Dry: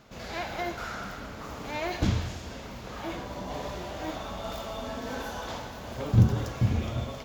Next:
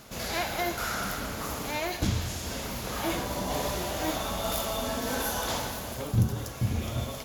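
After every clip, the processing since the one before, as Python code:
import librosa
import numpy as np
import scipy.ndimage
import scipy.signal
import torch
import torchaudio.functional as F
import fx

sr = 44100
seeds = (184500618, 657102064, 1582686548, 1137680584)

y = fx.peak_eq(x, sr, hz=11000.0, db=13.0, octaves=0.63)
y = fx.rider(y, sr, range_db=5, speed_s=0.5)
y = fx.high_shelf(y, sr, hz=4800.0, db=8.0)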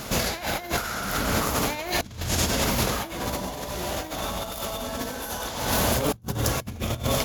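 y = fx.over_compress(x, sr, threshold_db=-36.0, ratio=-0.5)
y = F.gain(torch.from_numpy(y), 9.0).numpy()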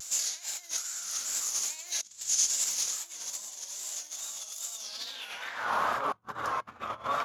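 y = fx.filter_sweep_bandpass(x, sr, from_hz=6900.0, to_hz=1200.0, start_s=4.75, end_s=5.73, q=4.0)
y = fx.vibrato(y, sr, rate_hz=2.4, depth_cents=87.0)
y = F.gain(torch.from_numpy(y), 6.5).numpy()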